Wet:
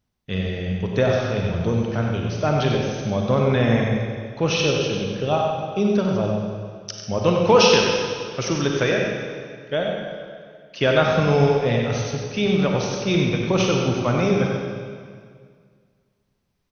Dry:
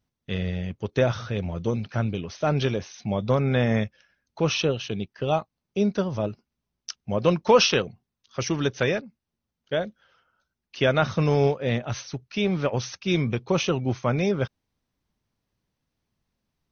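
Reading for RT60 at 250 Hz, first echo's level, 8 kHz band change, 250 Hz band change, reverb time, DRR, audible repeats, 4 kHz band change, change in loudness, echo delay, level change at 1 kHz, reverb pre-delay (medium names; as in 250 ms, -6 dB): 2.1 s, -7.0 dB, no reading, +4.5 dB, 2.0 s, -0.5 dB, 2, +4.5 dB, +4.0 dB, 95 ms, +5.0 dB, 34 ms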